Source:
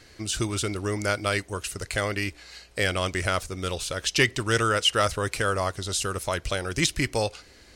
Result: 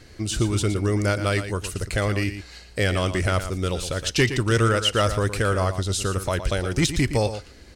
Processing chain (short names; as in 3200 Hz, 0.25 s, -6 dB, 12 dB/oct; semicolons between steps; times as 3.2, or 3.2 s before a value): low shelf 440 Hz +8.5 dB; soft clip -9.5 dBFS, distortion -22 dB; echo 0.116 s -10.5 dB